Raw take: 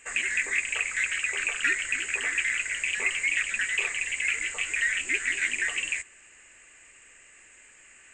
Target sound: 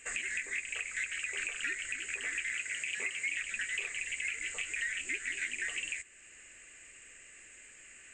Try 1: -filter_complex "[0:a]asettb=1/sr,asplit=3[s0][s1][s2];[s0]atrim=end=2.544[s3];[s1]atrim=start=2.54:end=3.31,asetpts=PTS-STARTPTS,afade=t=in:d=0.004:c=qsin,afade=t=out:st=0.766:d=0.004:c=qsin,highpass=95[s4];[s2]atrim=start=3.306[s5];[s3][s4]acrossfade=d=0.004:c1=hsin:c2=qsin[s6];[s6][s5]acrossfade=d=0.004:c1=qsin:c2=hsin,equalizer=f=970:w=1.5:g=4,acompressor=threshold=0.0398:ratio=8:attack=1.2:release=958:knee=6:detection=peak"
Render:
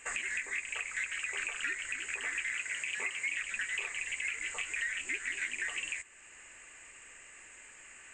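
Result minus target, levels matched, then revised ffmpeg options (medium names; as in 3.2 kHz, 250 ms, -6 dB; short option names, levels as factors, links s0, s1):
1 kHz band +6.0 dB
-filter_complex "[0:a]asettb=1/sr,asplit=3[s0][s1][s2];[s0]atrim=end=2.544[s3];[s1]atrim=start=2.54:end=3.31,asetpts=PTS-STARTPTS,afade=t=in:d=0.004:c=qsin,afade=t=out:st=0.766:d=0.004:c=qsin,highpass=95[s4];[s2]atrim=start=3.306[s5];[s3][s4]acrossfade=d=0.004:c1=hsin:c2=qsin[s6];[s6][s5]acrossfade=d=0.004:c1=qsin:c2=hsin,equalizer=f=970:w=1.5:g=-7.5,acompressor=threshold=0.0398:ratio=8:attack=1.2:release=958:knee=6:detection=peak"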